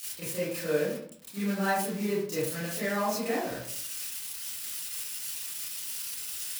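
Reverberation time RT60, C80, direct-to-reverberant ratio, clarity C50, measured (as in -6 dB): 0.60 s, 5.0 dB, -12.5 dB, 0.0 dB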